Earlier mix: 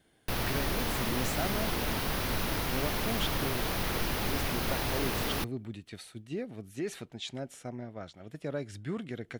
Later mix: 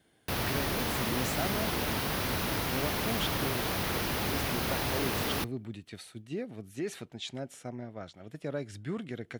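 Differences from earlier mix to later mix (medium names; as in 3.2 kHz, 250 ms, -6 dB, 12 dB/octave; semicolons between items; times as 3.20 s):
background: send +10.5 dB; master: add high-pass 59 Hz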